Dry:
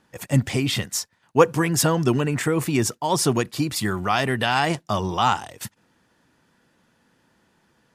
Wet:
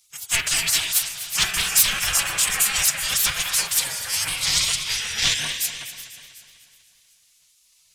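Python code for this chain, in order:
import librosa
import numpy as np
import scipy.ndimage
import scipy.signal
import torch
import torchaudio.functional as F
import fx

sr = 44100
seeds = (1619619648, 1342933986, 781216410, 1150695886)

p1 = fx.rattle_buzz(x, sr, strikes_db=-20.0, level_db=-19.0)
p2 = p1 + fx.echo_alternate(p1, sr, ms=186, hz=2100.0, feedback_pct=53, wet_db=-6.5, dry=0)
p3 = fx.spec_box(p2, sr, start_s=3.84, length_s=0.41, low_hz=530.0, high_hz=4400.0, gain_db=-15)
p4 = fx.pitch_keep_formants(p3, sr, semitones=9.0)
p5 = fx.peak_eq(p4, sr, hz=1700.0, db=5.5, octaves=2.0)
p6 = fx.rev_spring(p5, sr, rt60_s=1.6, pass_ms=(33, 40), chirp_ms=60, drr_db=7.0)
p7 = fx.fold_sine(p6, sr, drive_db=7, ceiling_db=-3.0)
p8 = fx.spec_gate(p7, sr, threshold_db=-20, keep='weak')
p9 = fx.curve_eq(p8, sr, hz=(150.0, 340.0, 7400.0), db=(0, -16, 7))
p10 = fx.echo_warbled(p9, sr, ms=246, feedback_pct=52, rate_hz=2.8, cents=70, wet_db=-13)
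y = p10 * librosa.db_to_amplitude(-1.0)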